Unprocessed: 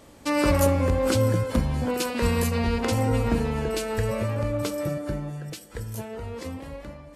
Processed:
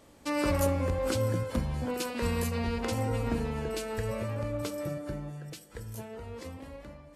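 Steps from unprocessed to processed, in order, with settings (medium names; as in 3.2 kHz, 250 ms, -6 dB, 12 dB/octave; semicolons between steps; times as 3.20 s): de-hum 52.01 Hz, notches 5; trim -6.5 dB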